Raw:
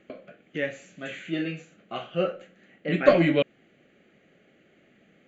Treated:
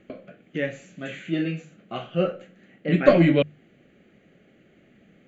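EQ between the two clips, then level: low shelf 230 Hz +10.5 dB; notches 50/100/150 Hz; 0.0 dB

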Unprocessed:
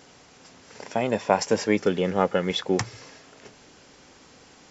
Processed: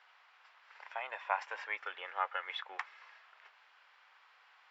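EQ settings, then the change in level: HPF 1000 Hz 24 dB/oct; dynamic EQ 4700 Hz, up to -5 dB, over -50 dBFS, Q 2.8; air absorption 440 m; -2.0 dB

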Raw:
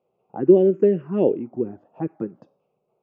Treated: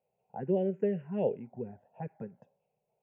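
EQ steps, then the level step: bell 620 Hz -2.5 dB; fixed phaser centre 1200 Hz, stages 6; -4.5 dB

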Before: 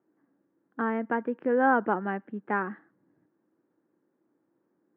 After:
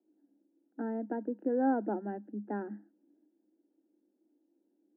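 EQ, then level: running mean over 39 samples; rippled Chebyshev high-pass 200 Hz, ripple 6 dB; bell 330 Hz +6 dB 0.48 oct; 0.0 dB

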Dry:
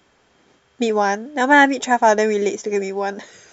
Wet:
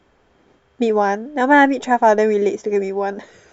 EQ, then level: tone controls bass -8 dB, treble -2 dB; tilt -2.5 dB/oct; low shelf 93 Hz +7.5 dB; 0.0 dB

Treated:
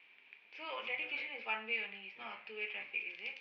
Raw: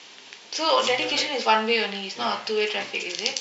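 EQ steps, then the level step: band-pass 2400 Hz, Q 8.1; air absorption 160 m; tilt -5.5 dB/oct; +2.5 dB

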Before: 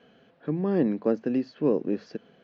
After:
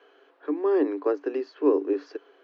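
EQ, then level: rippled Chebyshev high-pass 280 Hz, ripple 9 dB; +7.5 dB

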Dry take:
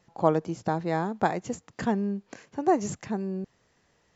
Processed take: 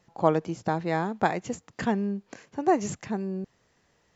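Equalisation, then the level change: dynamic EQ 2500 Hz, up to +5 dB, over -46 dBFS, Q 1.1; 0.0 dB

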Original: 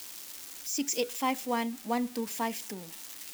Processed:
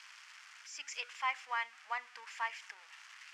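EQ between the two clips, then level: HPF 1300 Hz 24 dB/oct; tape spacing loss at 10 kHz 37 dB; bell 3800 Hz -8.5 dB 0.42 oct; +10.0 dB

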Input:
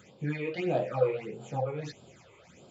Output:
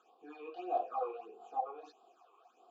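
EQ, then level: vowel filter a; HPF 330 Hz 12 dB/oct; fixed phaser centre 580 Hz, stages 6; +8.5 dB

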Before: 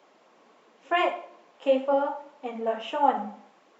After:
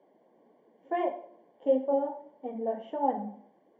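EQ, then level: running mean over 34 samples; 0.0 dB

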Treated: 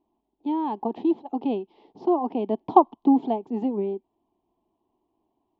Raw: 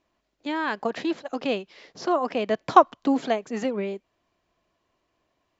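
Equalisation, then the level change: EQ curve 160 Hz 0 dB, 230 Hz +9 dB, 380 Hz +10 dB, 560 Hz -6 dB, 860 Hz +12 dB, 1500 Hz -24 dB, 3200 Hz -7 dB, 6500 Hz -26 dB; -5.0 dB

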